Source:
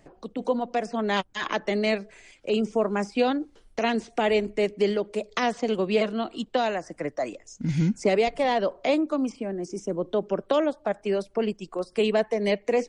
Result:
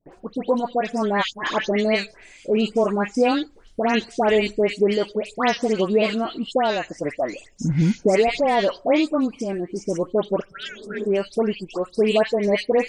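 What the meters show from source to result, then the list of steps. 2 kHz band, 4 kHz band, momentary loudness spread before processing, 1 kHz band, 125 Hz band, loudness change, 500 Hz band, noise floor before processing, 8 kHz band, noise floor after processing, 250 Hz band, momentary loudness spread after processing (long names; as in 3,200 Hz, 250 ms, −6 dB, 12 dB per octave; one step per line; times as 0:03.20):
+4.5 dB, +4.5 dB, 8 LU, +4.5 dB, +4.5 dB, +4.5 dB, +4.0 dB, −59 dBFS, +4.5 dB, −51 dBFS, +4.5 dB, 9 LU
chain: healed spectral selection 0:10.51–0:11.01, 210–1,300 Hz both
all-pass dispersion highs, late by 130 ms, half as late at 2,000 Hz
noise gate with hold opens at −50 dBFS
level +4.5 dB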